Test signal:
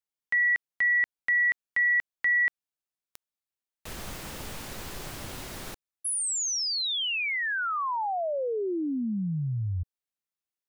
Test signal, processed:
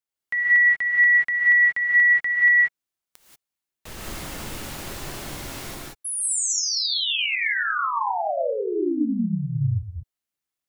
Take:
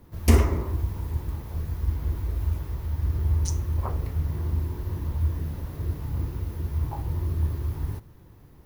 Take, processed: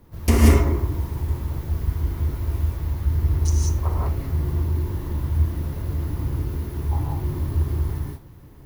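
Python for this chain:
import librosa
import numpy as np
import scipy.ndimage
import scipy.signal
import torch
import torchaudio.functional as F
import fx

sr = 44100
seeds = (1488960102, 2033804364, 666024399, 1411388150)

y = fx.rev_gated(x, sr, seeds[0], gate_ms=210, shape='rising', drr_db=-3.0)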